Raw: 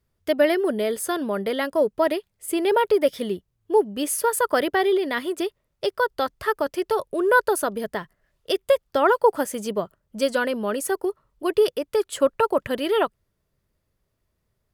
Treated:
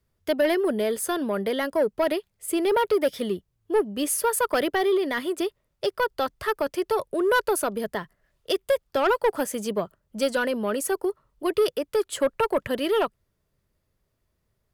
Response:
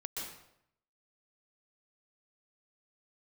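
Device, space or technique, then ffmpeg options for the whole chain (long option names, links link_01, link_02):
one-band saturation: -filter_complex "[0:a]acrossover=split=210|4500[link_01][link_02][link_03];[link_02]asoftclip=type=tanh:threshold=-16dB[link_04];[link_01][link_04][link_03]amix=inputs=3:normalize=0"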